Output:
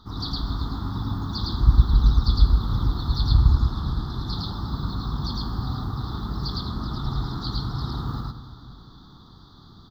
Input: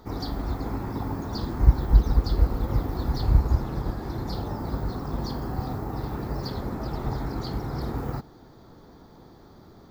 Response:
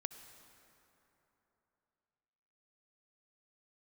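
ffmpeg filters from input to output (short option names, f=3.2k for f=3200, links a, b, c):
-filter_complex "[0:a]firequalizer=gain_entry='entry(170,0);entry(530,-17);entry(1200,4);entry(2400,-24);entry(3500,12);entry(6800,-9);entry(14000,-12)':delay=0.05:min_phase=1,asplit=2[a][b];[1:a]atrim=start_sample=2205,adelay=109[c];[b][c]afir=irnorm=-1:irlink=0,volume=2.5dB[d];[a][d]amix=inputs=2:normalize=0"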